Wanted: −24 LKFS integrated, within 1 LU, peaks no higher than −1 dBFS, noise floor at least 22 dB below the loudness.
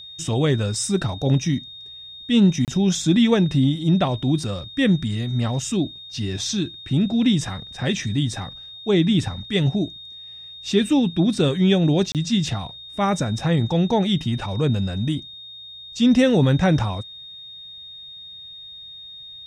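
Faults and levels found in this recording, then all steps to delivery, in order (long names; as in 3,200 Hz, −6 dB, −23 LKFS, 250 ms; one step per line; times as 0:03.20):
number of dropouts 2; longest dropout 28 ms; interfering tone 3,700 Hz; level of the tone −37 dBFS; integrated loudness −21.0 LKFS; sample peak −7.0 dBFS; target loudness −24.0 LKFS
→ repair the gap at 0:02.65/0:12.12, 28 ms
notch filter 3,700 Hz, Q 30
level −3 dB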